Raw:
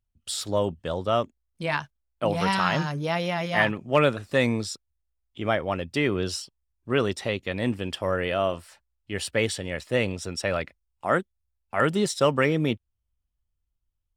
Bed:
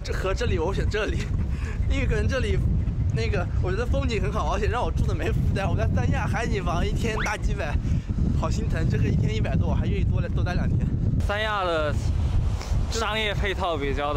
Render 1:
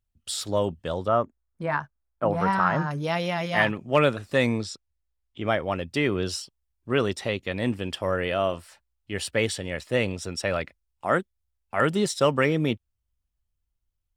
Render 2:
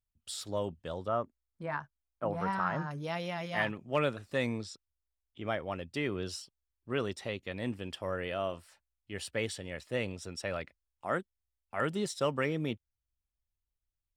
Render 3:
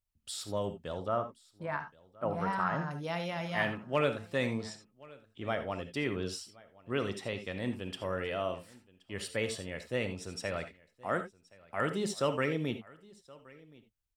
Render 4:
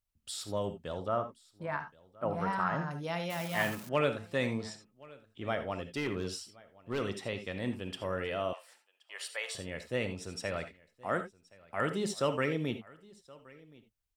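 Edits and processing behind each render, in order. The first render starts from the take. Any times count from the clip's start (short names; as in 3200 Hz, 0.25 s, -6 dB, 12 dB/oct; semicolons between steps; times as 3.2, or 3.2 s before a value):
1.08–2.91 resonant high shelf 2100 Hz -12 dB, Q 1.5; 4.58–5.48 air absorption 50 m
gain -9.5 dB
echo 1.073 s -23 dB; non-linear reverb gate 0.1 s rising, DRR 8.5 dB
3.3–3.89 switching spikes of -34 dBFS; 5.9–7.01 hard clip -28 dBFS; 8.53–9.55 HPF 670 Hz 24 dB/oct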